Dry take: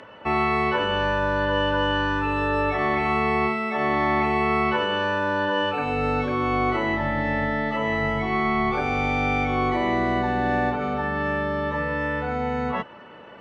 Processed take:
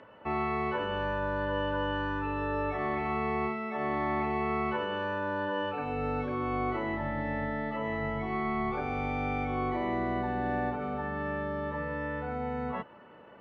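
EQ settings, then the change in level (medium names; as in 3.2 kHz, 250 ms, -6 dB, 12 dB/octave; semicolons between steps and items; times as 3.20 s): low-pass 1.7 kHz 6 dB/octave; -7.5 dB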